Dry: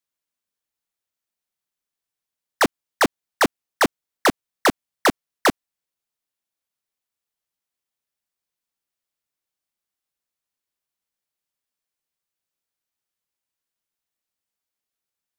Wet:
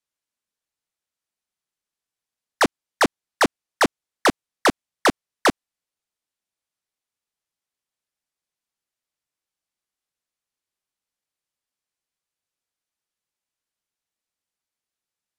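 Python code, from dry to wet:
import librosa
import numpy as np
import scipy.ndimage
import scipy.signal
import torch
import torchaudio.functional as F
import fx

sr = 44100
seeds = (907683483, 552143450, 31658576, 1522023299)

y = scipy.signal.sosfilt(scipy.signal.butter(2, 11000.0, 'lowpass', fs=sr, output='sos'), x)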